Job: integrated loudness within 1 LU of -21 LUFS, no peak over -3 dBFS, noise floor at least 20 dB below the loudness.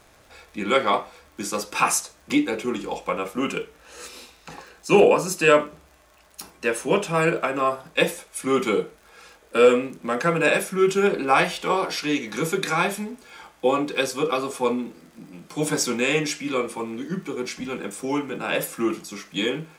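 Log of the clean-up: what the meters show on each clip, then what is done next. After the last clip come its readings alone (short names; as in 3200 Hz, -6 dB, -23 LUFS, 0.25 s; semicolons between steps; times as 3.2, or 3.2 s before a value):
ticks 50/s; loudness -23.5 LUFS; peak -3.5 dBFS; loudness target -21.0 LUFS
-> de-click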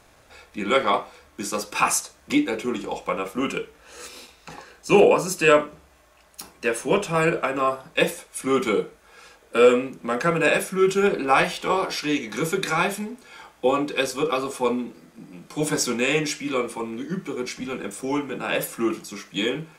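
ticks 0.10/s; loudness -23.5 LUFS; peak -3.5 dBFS; loudness target -21.0 LUFS
-> gain +2.5 dB; limiter -3 dBFS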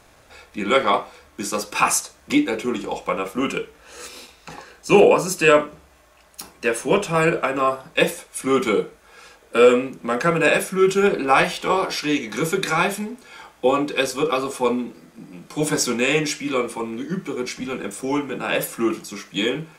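loudness -21.0 LUFS; peak -3.0 dBFS; noise floor -53 dBFS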